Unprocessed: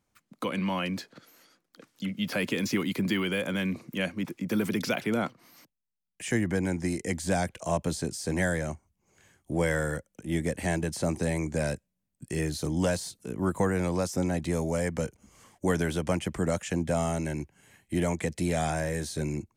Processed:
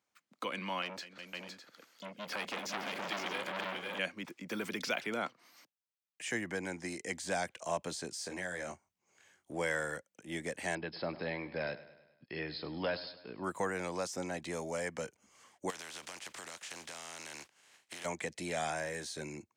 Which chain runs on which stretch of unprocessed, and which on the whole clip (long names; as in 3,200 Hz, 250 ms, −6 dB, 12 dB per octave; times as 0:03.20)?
0:00.82–0:03.99: multi-tap delay 205/367/511/608 ms −15/−10.5/−4/−11 dB + saturating transformer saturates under 1,800 Hz
0:08.14–0:09.53: double-tracking delay 22 ms −6 dB + downward compressor 10 to 1, threshold −27 dBFS
0:10.75–0:13.44: linear-phase brick-wall low-pass 5,300 Hz + repeating echo 102 ms, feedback 54%, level −16 dB
0:15.69–0:18.04: compressing power law on the bin magnitudes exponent 0.39 + low-pass filter 11,000 Hz + downward compressor 20 to 1, threshold −36 dBFS
whole clip: high-pass filter 830 Hz 6 dB per octave; parametric band 12,000 Hz −11 dB 0.74 octaves; level −2 dB